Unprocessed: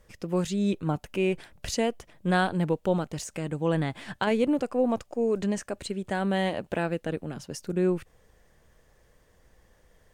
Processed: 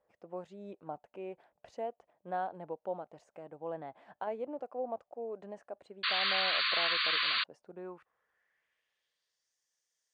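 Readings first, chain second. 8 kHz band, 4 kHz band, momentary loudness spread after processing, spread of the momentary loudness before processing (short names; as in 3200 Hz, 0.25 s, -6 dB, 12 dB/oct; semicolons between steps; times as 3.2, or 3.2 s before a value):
under -30 dB, +7.0 dB, 20 LU, 8 LU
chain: band-pass sweep 710 Hz -> 6000 Hz, 7.65–9.54; painted sound noise, 6.03–7.44, 1000–4700 Hz -25 dBFS; gain -6 dB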